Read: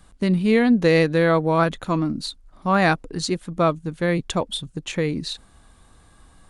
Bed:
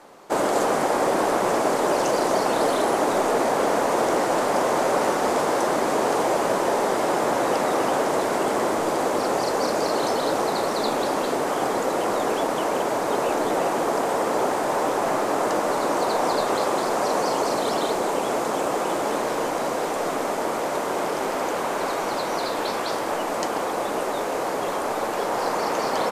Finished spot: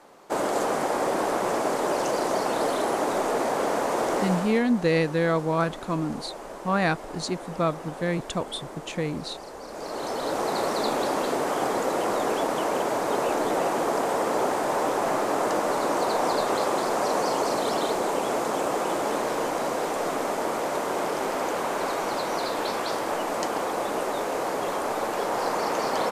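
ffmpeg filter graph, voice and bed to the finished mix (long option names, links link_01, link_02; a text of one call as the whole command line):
ffmpeg -i stem1.wav -i stem2.wav -filter_complex "[0:a]adelay=4000,volume=-5.5dB[link_01];[1:a]volume=11dB,afade=type=out:start_time=4.2:duration=0.43:silence=0.223872,afade=type=in:start_time=9.67:duration=0.96:silence=0.177828[link_02];[link_01][link_02]amix=inputs=2:normalize=0" out.wav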